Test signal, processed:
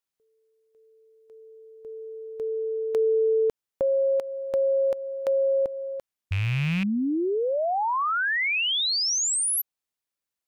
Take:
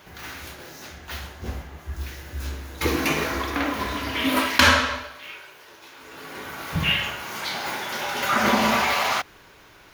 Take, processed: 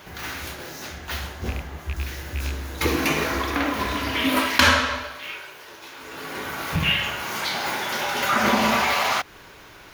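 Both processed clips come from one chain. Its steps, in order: rattling part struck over -28 dBFS, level -24 dBFS; in parallel at +1.5 dB: compressor, threshold -30 dBFS; on the sum: gain -2 dB

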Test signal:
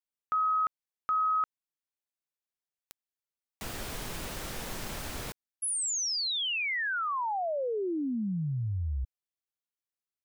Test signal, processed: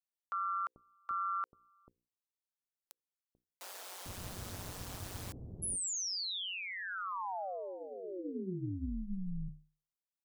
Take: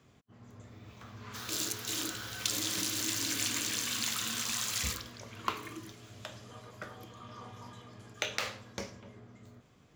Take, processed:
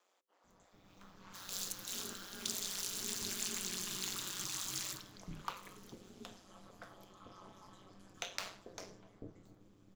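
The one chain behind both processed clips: bell 2100 Hz -5.5 dB 1.4 oct; notches 60/120/180/240/300/360/420 Hz; ring modulator 93 Hz; bands offset in time highs, lows 0.44 s, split 480 Hz; gain -2.5 dB

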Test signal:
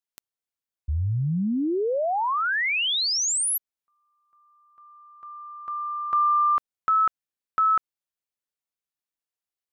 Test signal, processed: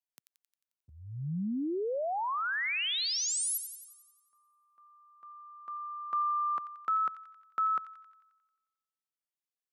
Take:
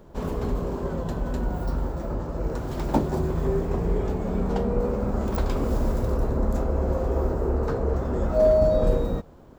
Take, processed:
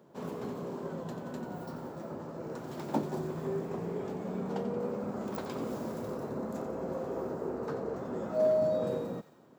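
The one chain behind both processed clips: HPF 140 Hz 24 dB/oct; on a send: thin delay 89 ms, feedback 59%, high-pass 1800 Hz, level -9.5 dB; on the sum: gain -8 dB

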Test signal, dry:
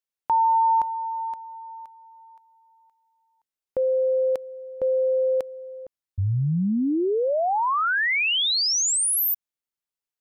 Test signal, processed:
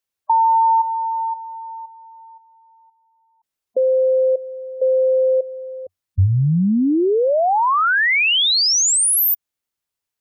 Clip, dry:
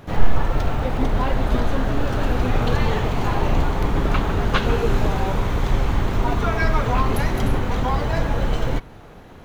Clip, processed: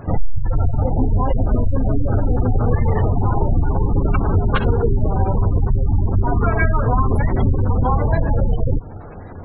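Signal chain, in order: spectral gate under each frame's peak -20 dB strong; bell 92 Hz +9.5 dB 0.31 oct; compressor 3:1, threshold -20 dBFS; gain +7 dB

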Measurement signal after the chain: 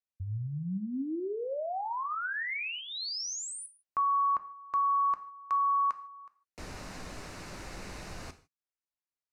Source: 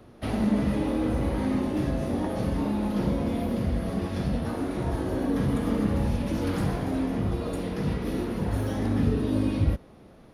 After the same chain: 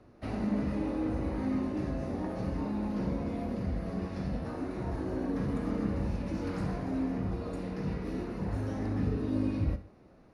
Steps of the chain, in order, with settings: LPF 6700 Hz 12 dB/oct; bell 3300 Hz -10.5 dB 0.28 oct; non-linear reverb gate 0.18 s falling, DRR 9.5 dB; gain -7 dB

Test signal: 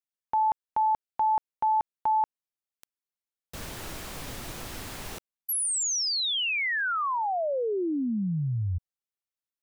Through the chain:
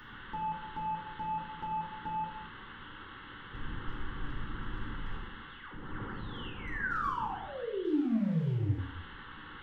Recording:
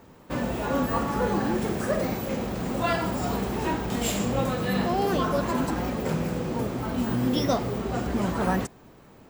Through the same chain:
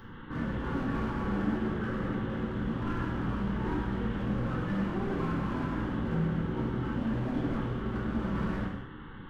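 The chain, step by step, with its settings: delta modulation 16 kbps, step -37 dBFS; low shelf 90 Hz +7.5 dB; fixed phaser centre 2400 Hz, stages 6; hard clip -27.5 dBFS; non-linear reverb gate 0.29 s falling, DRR -3 dB; gain -5.5 dB

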